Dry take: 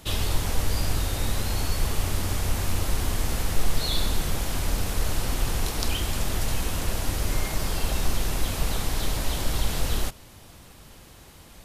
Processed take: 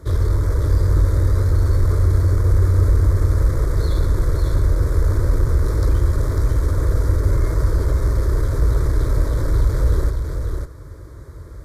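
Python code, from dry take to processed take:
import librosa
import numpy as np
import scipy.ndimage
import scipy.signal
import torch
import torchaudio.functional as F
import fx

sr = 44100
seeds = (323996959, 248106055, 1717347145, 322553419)

p1 = scipy.signal.sosfilt(scipy.signal.butter(2, 77.0, 'highpass', fs=sr, output='sos'), x)
p2 = fx.tilt_eq(p1, sr, slope=-4.0)
p3 = fx.notch(p2, sr, hz=2600.0, q=7.3)
p4 = 10.0 ** (-21.0 / 20.0) * (np.abs((p3 / 10.0 ** (-21.0 / 20.0) + 3.0) % 4.0 - 2.0) - 1.0)
p5 = p3 + (p4 * librosa.db_to_amplitude(-7.5))
p6 = fx.fixed_phaser(p5, sr, hz=770.0, stages=6)
p7 = p6 + fx.echo_single(p6, sr, ms=549, db=-5.0, dry=0)
y = p7 * librosa.db_to_amplitude(2.5)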